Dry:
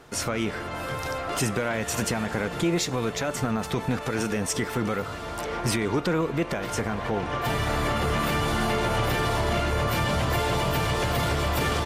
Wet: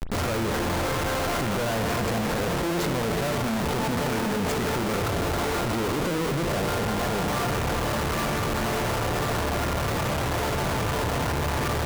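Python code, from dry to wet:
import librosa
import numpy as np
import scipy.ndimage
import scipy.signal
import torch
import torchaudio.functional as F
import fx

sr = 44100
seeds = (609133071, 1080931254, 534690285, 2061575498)

p1 = scipy.signal.medfilt(x, 15)
p2 = fx.rider(p1, sr, range_db=10, speed_s=2.0)
p3 = p1 + (p2 * 10.0 ** (-2.5 / 20.0))
p4 = fx.schmitt(p3, sr, flips_db=-36.5)
p5 = fx.rev_spring(p4, sr, rt60_s=3.1, pass_ms=(35,), chirp_ms=35, drr_db=7.0)
p6 = fx.env_flatten(p5, sr, amount_pct=50)
y = p6 * 10.0 ** (-5.0 / 20.0)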